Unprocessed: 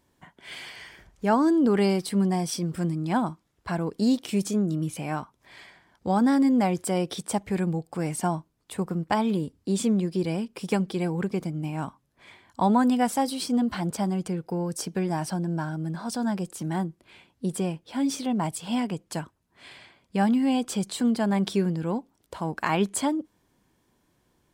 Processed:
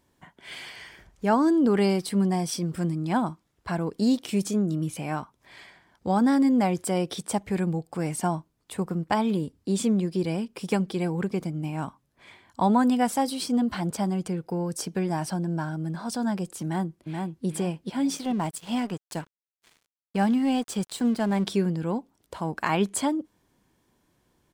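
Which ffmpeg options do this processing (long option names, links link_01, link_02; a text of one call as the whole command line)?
ffmpeg -i in.wav -filter_complex "[0:a]asplit=2[link_01][link_02];[link_02]afade=type=in:start_time=16.63:duration=0.01,afade=type=out:start_time=17.46:duration=0.01,aecho=0:1:430|860|1290|1720:0.668344|0.200503|0.060151|0.0180453[link_03];[link_01][link_03]amix=inputs=2:normalize=0,asettb=1/sr,asplit=3[link_04][link_05][link_06];[link_04]atrim=end=18.174[link_07];[link_05]atrim=start=18.17:end=21.44,asetpts=PTS-STARTPTS,afade=type=in:duration=0.004:curve=qsin,afade=type=out:start_time=3.266:duration=0.004:curve=qsin,aeval=exprs='sgn(val(0))*max(abs(val(0))-0.00708,0)':channel_layout=same[link_08];[link_06]atrim=start=21.436[link_09];[link_07][link_08]acrossfade=duration=0.004:curve1=hsin:curve2=qsin[link_10];[link_10][link_09]acrossfade=duration=0.004:curve1=qsin:curve2=hsin" out.wav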